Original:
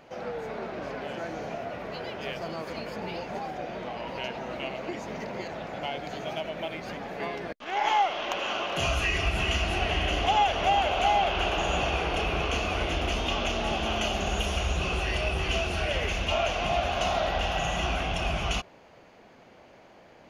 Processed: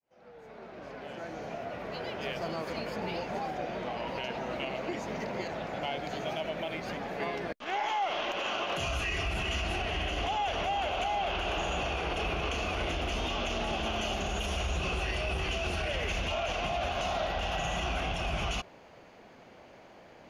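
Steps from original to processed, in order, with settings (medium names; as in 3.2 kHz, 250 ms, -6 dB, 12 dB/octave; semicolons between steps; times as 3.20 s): fade-in on the opening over 2.36 s; peak limiter -23.5 dBFS, peak gain reduction 10 dB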